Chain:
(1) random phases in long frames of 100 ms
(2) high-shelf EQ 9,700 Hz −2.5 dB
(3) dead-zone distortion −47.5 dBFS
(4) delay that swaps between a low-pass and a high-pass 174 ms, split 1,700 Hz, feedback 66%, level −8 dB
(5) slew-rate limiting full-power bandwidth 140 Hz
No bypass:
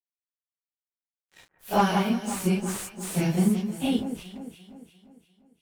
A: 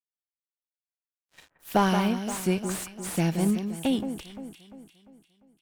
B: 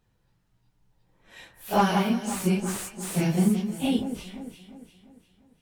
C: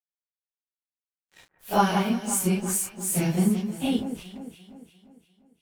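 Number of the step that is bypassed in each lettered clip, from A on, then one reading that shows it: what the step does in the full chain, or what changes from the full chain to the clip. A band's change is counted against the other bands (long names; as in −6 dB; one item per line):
1, change in crest factor +2.0 dB
3, distortion level −25 dB
5, distortion level −10 dB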